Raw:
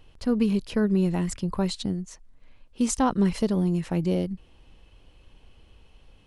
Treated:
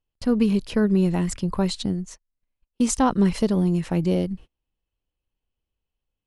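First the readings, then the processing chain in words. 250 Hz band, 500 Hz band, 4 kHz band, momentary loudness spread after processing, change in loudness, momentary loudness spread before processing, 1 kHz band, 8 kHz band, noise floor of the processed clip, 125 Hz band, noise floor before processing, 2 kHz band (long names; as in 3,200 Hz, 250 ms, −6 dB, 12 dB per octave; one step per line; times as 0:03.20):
+3.0 dB, +3.0 dB, +3.0 dB, 8 LU, +3.0 dB, 8 LU, +3.0 dB, +3.0 dB, below −85 dBFS, +3.0 dB, −57 dBFS, +3.0 dB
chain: noise gate −42 dBFS, range −33 dB
level +3 dB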